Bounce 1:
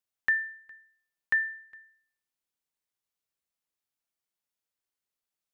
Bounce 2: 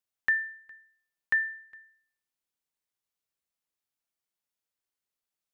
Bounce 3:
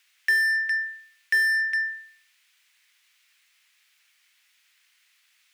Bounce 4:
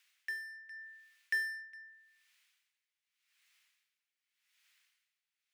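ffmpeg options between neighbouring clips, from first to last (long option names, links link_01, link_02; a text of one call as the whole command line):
ffmpeg -i in.wav -af anull out.wav
ffmpeg -i in.wav -filter_complex "[0:a]highpass=frequency=2100:width_type=q:width=1.8,asplit=2[link_01][link_02];[link_02]highpass=frequency=720:poles=1,volume=37dB,asoftclip=type=tanh:threshold=-14.5dB[link_03];[link_01][link_03]amix=inputs=2:normalize=0,lowpass=frequency=2800:poles=1,volume=-6dB" out.wav
ffmpeg -i in.wav -af "aeval=exprs='val(0)*pow(10,-20*(0.5-0.5*cos(2*PI*0.85*n/s))/20)':channel_layout=same,volume=-7dB" out.wav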